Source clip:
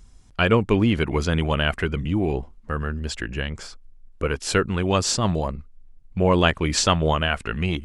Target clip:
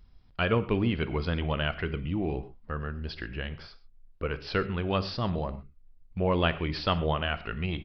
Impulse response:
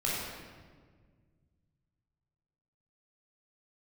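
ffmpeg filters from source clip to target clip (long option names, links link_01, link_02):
-filter_complex "[0:a]deesser=0.45,asplit=2[link_01][link_02];[1:a]atrim=start_sample=2205,atrim=end_sample=6174[link_03];[link_02][link_03]afir=irnorm=-1:irlink=0,volume=-16.5dB[link_04];[link_01][link_04]amix=inputs=2:normalize=0,aresample=11025,aresample=44100,volume=-8.5dB"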